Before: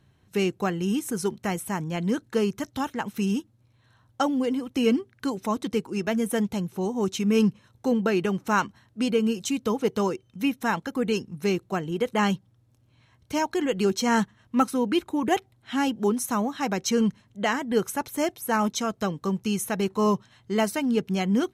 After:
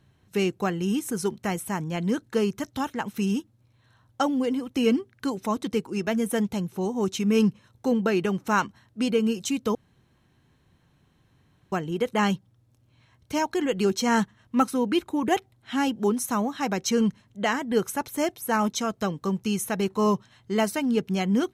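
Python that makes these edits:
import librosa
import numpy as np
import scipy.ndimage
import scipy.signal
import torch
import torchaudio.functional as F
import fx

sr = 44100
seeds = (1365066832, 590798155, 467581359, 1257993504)

y = fx.edit(x, sr, fx.room_tone_fill(start_s=9.75, length_s=1.97), tone=tone)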